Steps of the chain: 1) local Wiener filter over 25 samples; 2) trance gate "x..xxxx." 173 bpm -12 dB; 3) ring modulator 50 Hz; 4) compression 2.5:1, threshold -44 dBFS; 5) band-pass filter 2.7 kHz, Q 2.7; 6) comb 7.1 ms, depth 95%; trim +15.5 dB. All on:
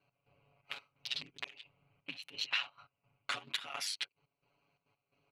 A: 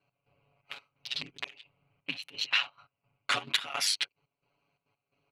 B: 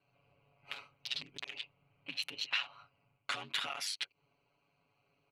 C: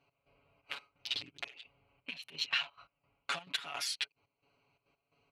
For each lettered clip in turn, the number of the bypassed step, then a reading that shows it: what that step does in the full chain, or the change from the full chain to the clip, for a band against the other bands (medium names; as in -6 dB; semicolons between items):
4, mean gain reduction 3.5 dB; 2, momentary loudness spread change -1 LU; 3, loudness change +1.5 LU